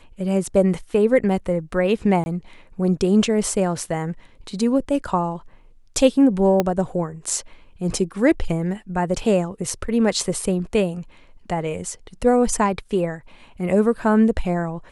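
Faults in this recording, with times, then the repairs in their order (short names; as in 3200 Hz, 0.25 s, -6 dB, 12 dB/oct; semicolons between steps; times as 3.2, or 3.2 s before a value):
2.24–2.26 gap 21 ms
6.6 pop -6 dBFS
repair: de-click; interpolate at 2.24, 21 ms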